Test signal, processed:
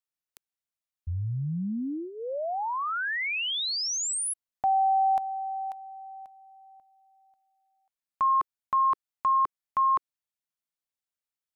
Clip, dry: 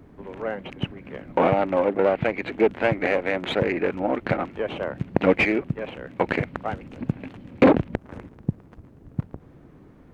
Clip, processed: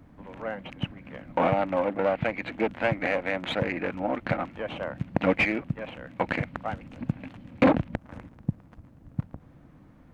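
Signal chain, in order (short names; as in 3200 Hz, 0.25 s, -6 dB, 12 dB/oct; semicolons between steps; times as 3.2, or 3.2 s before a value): bell 400 Hz -13.5 dB 0.33 oct; gain -2.5 dB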